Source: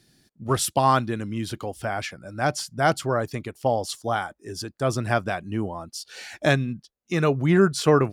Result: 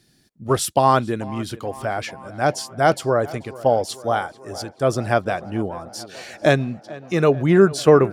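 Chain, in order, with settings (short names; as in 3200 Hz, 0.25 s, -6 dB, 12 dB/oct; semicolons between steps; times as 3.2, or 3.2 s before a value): dynamic EQ 490 Hz, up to +6 dB, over -32 dBFS, Q 0.98; on a send: tape echo 0.439 s, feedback 78%, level -18 dB, low-pass 3000 Hz; on the sum: gain +1 dB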